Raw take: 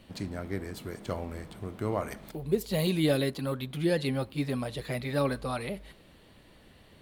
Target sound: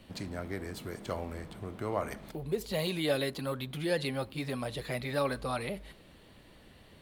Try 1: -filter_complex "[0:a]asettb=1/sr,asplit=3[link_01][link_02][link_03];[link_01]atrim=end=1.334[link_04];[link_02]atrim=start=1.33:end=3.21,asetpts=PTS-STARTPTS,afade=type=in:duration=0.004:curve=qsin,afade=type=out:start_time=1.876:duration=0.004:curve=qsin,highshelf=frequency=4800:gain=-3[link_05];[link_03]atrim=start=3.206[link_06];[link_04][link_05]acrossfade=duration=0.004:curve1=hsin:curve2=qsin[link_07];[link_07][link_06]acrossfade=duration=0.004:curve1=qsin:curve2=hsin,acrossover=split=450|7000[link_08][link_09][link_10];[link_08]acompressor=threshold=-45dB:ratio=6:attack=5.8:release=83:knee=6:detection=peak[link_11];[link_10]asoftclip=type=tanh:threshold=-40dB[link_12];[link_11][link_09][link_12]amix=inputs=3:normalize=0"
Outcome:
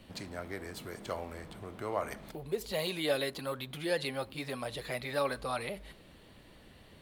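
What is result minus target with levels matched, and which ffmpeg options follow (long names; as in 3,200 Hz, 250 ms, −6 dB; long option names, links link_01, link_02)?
downward compressor: peak gain reduction +7.5 dB
-filter_complex "[0:a]asettb=1/sr,asplit=3[link_01][link_02][link_03];[link_01]atrim=end=1.334[link_04];[link_02]atrim=start=1.33:end=3.21,asetpts=PTS-STARTPTS,afade=type=in:duration=0.004:curve=qsin,afade=type=out:start_time=1.876:duration=0.004:curve=qsin,highshelf=frequency=4800:gain=-3[link_05];[link_03]atrim=start=3.206[link_06];[link_04][link_05]acrossfade=duration=0.004:curve1=hsin:curve2=qsin[link_07];[link_07][link_06]acrossfade=duration=0.004:curve1=qsin:curve2=hsin,acrossover=split=450|7000[link_08][link_09][link_10];[link_08]acompressor=threshold=-36dB:ratio=6:attack=5.8:release=83:knee=6:detection=peak[link_11];[link_10]asoftclip=type=tanh:threshold=-40dB[link_12];[link_11][link_09][link_12]amix=inputs=3:normalize=0"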